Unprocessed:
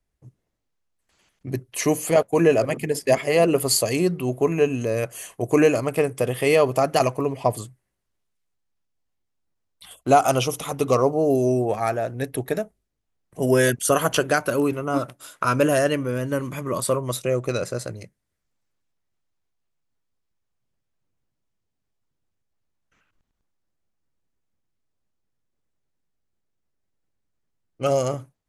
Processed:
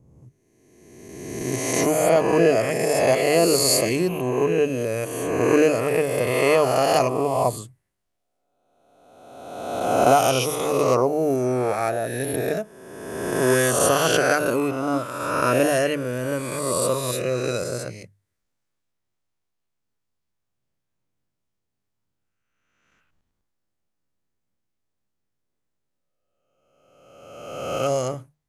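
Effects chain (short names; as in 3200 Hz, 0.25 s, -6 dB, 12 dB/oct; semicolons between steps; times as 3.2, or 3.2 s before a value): spectral swells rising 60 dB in 1.57 s; notches 50/100/150 Hz; gain -3 dB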